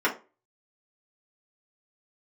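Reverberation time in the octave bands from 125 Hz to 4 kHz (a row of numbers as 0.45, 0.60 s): 0.30, 0.30, 0.35, 0.30, 0.25, 0.20 s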